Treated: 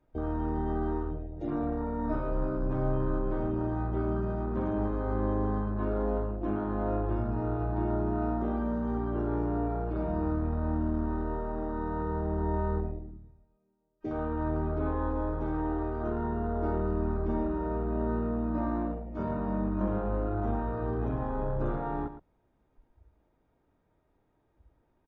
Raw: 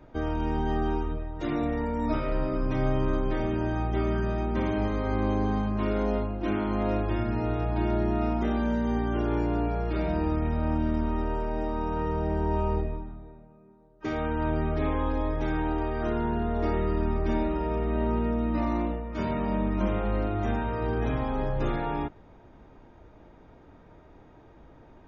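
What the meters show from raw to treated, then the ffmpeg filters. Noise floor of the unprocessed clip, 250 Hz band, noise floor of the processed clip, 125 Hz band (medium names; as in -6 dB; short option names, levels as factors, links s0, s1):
-53 dBFS, -3.0 dB, -72 dBFS, -2.5 dB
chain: -filter_complex "[0:a]afwtdn=0.0251,asplit=2[s0][s1];[s1]aecho=0:1:113:0.251[s2];[s0][s2]amix=inputs=2:normalize=0,volume=0.708"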